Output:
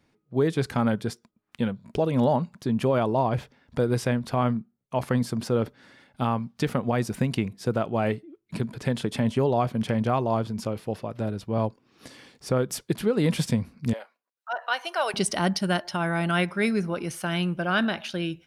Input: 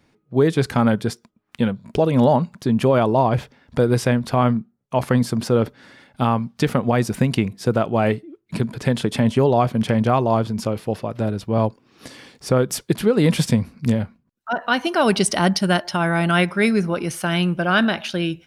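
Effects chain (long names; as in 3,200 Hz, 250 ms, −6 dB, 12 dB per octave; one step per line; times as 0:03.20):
0:13.93–0:15.14: high-pass filter 530 Hz 24 dB per octave
level −6.5 dB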